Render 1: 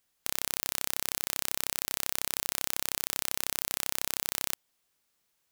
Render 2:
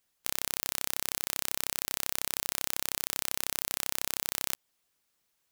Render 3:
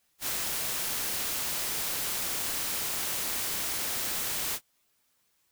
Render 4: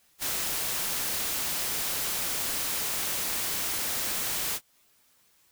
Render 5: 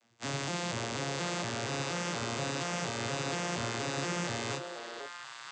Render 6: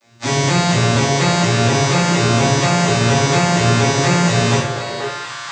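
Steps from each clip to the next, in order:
harmonic-percussive split harmonic -7 dB; trim +2 dB
phase randomisation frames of 100 ms; in parallel at -2 dB: peak limiter -32.5 dBFS, peak gain reduction 10 dB
in parallel at +2.5 dB: compression, threshold -40 dBFS, peak gain reduction 11 dB; on the sum: wavefolder -24.5 dBFS
vocoder on a broken chord minor triad, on A#2, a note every 237 ms; repeats whose band climbs or falls 484 ms, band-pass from 520 Hz, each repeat 1.4 oct, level -1 dB
reverberation RT60 0.65 s, pre-delay 3 ms, DRR -10.5 dB; trim +8 dB

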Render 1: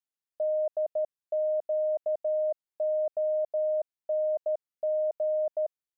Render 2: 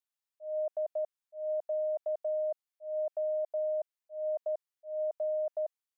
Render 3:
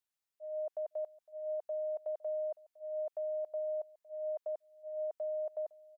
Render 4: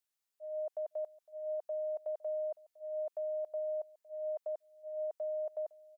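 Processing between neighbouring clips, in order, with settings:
high-pass 700 Hz 12 dB/octave; slow attack 189 ms
dynamic bell 640 Hz, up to -5 dB, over -43 dBFS, Q 2.4; delay 509 ms -21.5 dB
tone controls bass -4 dB, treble +3 dB

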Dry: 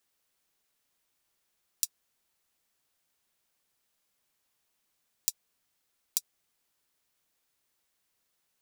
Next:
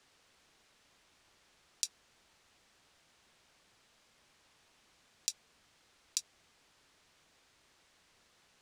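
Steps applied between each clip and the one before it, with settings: distance through air 83 m; in parallel at +2.5 dB: compressor with a negative ratio -46 dBFS, ratio -1; on the sum: peaking EQ 76 Hz +2.5 dB; trim +1 dB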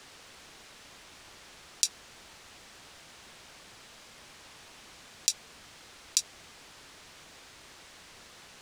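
loudness maximiser +17.5 dB; trim -1 dB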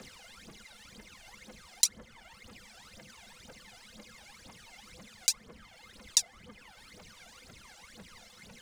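reverb removal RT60 1.2 s; small resonant body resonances 210/500/2100 Hz, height 12 dB, ringing for 90 ms; phaser 2 Hz, delay 1.5 ms, feedback 79%; trim -3 dB

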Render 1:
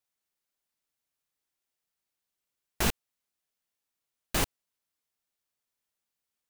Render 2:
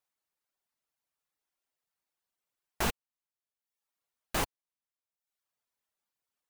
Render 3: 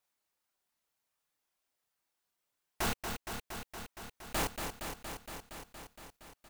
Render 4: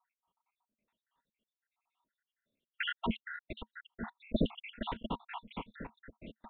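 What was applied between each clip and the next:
reverb removal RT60 0.81 s; peaking EQ 920 Hz +6 dB 2.1 oct; in parallel at -2 dB: peak limiter -21 dBFS, peak gain reduction 8.5 dB; on the sum: trim -7.5 dB
doubling 29 ms -4 dB; saturation -32 dBFS, distortion -8 dB; bit-crushed delay 233 ms, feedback 80%, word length 12-bit, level -6 dB; trim +3 dB
random holes in the spectrogram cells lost 81%; small resonant body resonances 220/950 Hz, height 14 dB, ringing for 70 ms; resampled via 8 kHz; trim +7 dB

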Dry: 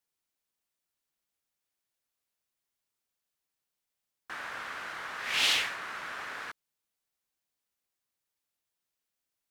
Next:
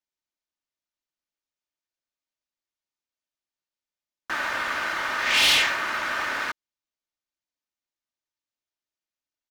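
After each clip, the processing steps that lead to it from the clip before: steep low-pass 7.1 kHz; comb 3.3 ms, depth 40%; waveshaping leveller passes 3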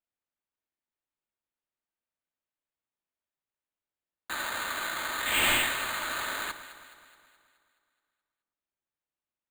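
sample-rate reducer 5.5 kHz, jitter 0%; on a send: echo whose repeats swap between lows and highs 106 ms, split 1.3 kHz, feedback 73%, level -10.5 dB; on the sum: trim -6 dB

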